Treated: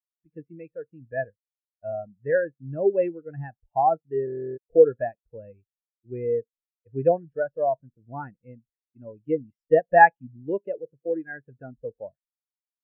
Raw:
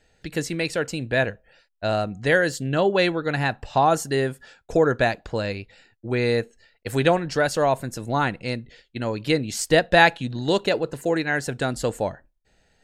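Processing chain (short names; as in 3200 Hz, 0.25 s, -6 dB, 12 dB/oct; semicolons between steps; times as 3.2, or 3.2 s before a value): polynomial smoothing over 25 samples; stuck buffer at 4.25, samples 1024, times 13; spectral expander 2.5:1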